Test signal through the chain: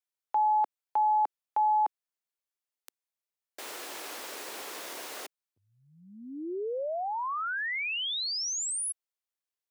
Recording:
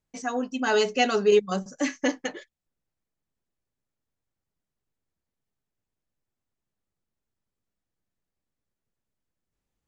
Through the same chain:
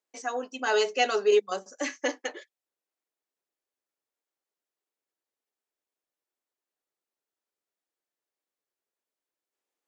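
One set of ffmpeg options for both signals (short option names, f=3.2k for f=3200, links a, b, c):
-af "highpass=f=340:w=0.5412,highpass=f=340:w=1.3066,volume=-1.5dB"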